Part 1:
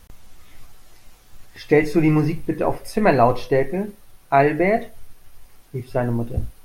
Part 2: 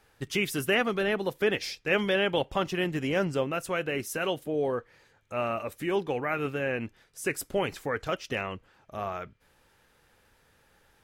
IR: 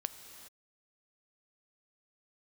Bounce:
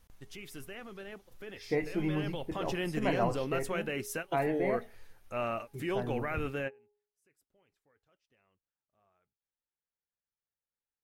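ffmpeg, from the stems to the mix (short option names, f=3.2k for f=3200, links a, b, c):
-filter_complex "[0:a]volume=-15.5dB,asplit=2[a][b];[1:a]alimiter=limit=-22dB:level=0:latency=1:release=12,volume=-3.5dB,afade=t=in:st=2.05:d=0.62:silence=0.281838[c];[b]apad=whole_len=486439[d];[c][d]sidechaingate=range=-36dB:threshold=-60dB:ratio=16:detection=peak[e];[a][e]amix=inputs=2:normalize=0,bandreject=f=415.1:t=h:w=4,bandreject=f=830.2:t=h:w=4"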